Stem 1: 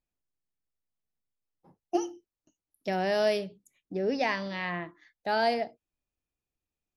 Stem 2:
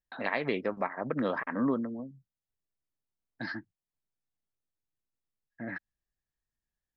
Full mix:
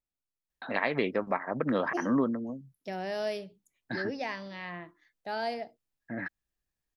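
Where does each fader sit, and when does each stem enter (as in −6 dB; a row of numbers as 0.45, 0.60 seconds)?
−7.0, +2.0 decibels; 0.00, 0.50 seconds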